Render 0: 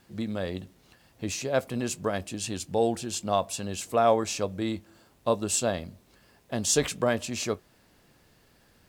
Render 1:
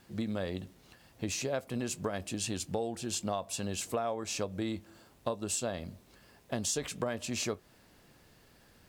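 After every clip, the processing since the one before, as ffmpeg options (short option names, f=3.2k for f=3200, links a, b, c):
-af "acompressor=threshold=-30dB:ratio=10"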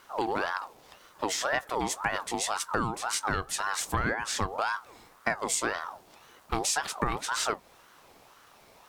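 -af "aeval=exprs='val(0)*sin(2*PI*920*n/s+920*0.4/1.9*sin(2*PI*1.9*n/s))':c=same,volume=7.5dB"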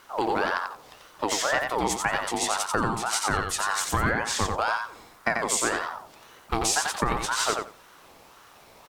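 -af "aecho=1:1:89|178|267:0.596|0.0953|0.0152,volume=3dB"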